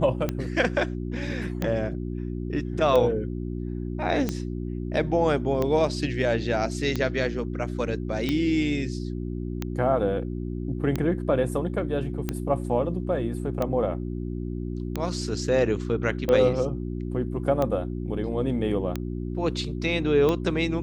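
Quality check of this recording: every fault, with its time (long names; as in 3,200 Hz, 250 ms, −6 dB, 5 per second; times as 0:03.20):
mains hum 60 Hz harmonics 6 −31 dBFS
scratch tick 45 rpm −13 dBFS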